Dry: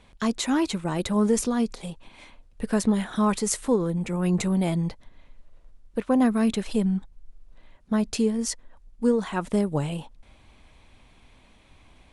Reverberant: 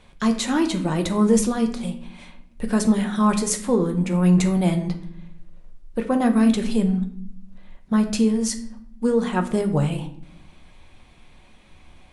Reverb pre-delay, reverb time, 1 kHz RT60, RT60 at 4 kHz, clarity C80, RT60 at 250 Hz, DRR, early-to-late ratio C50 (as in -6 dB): 5 ms, 0.65 s, 0.55 s, 0.45 s, 14.5 dB, 1.2 s, 4.5 dB, 11.0 dB